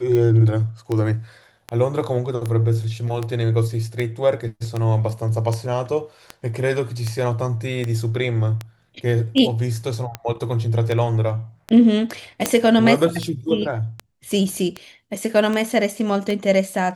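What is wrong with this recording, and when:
tick 78 rpm -12 dBFS
12.46 pop -2 dBFS

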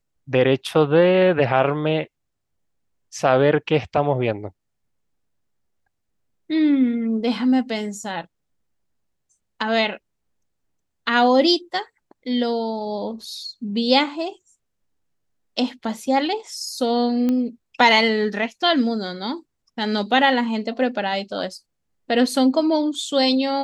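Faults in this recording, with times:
17.29 pop -12 dBFS

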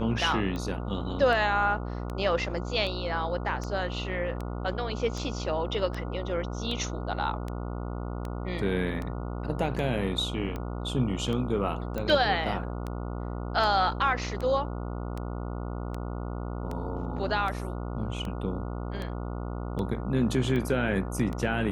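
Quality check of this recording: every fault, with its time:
buzz 60 Hz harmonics 24 -34 dBFS
tick 78 rpm -22 dBFS
11.98 pop -19 dBFS

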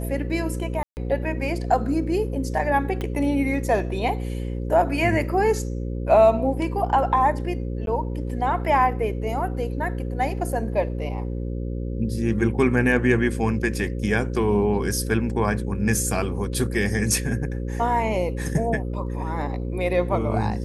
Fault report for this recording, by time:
buzz 60 Hz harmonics 9 -28 dBFS
0.83–0.97 gap 0.139 s
3.01 pop -16 dBFS
7.86–7.87 gap 12 ms

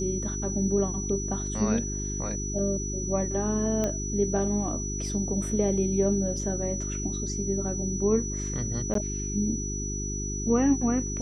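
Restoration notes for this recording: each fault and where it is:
hum 50 Hz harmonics 8 -33 dBFS
tone 5900 Hz -34 dBFS
3.84 pop -15 dBFS
8.94–8.95 gap 13 ms

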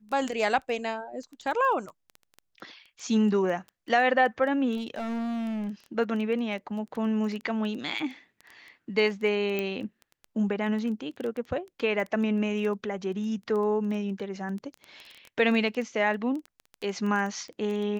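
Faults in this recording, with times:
crackle 12/s -32 dBFS
4.76–5.68 clipped -29 dBFS
9.59 pop -16 dBFS

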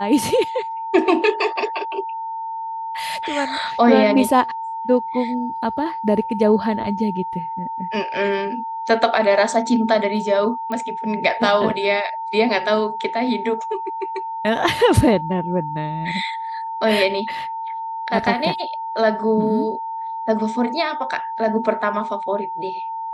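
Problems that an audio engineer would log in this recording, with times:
tone 900 Hz -25 dBFS
10.72 pop -15 dBFS

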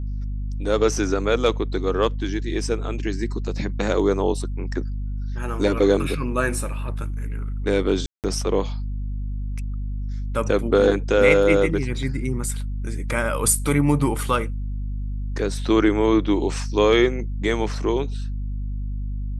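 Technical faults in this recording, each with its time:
hum 50 Hz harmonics 5 -27 dBFS
8.06–8.24 gap 0.178 s

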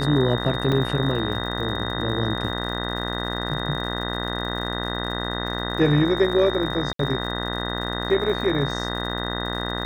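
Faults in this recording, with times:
buzz 60 Hz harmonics 33 -29 dBFS
crackle 99/s -34 dBFS
tone 3700 Hz -31 dBFS
0.72 gap 2.7 ms
6.93–6.99 gap 63 ms

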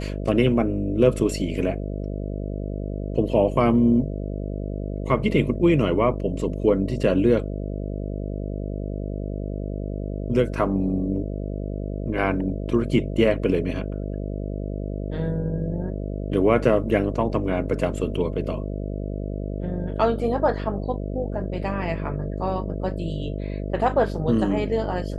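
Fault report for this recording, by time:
buzz 50 Hz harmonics 13 -29 dBFS

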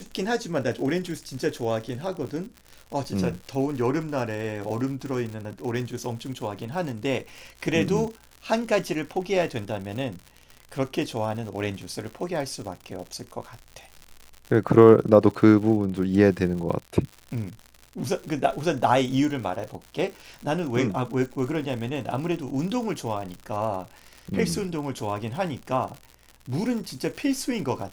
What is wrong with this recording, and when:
crackle 110/s -33 dBFS

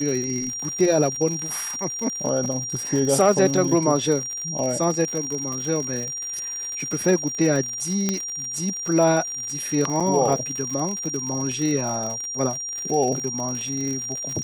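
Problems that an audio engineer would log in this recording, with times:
crackle 93/s -27 dBFS
tone 5700 Hz -28 dBFS
8.09 pop -8 dBFS
10–10.01 gap 6.1 ms

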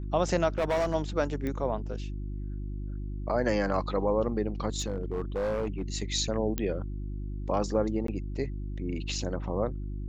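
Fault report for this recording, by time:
hum 50 Hz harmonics 7 -35 dBFS
0.58–0.95 clipped -23 dBFS
1.47 pop -21 dBFS
4.79–5.82 clipped -26 dBFS
6.58 pop -15 dBFS
8.07–8.08 gap 13 ms

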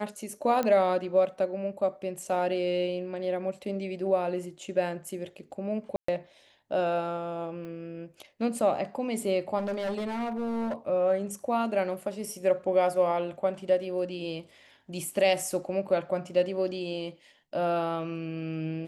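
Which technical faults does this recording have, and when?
0.63 pop -16 dBFS
5.96–6.08 gap 0.124 s
7.65 pop -30 dBFS
9.58–10.75 clipped -27.5 dBFS

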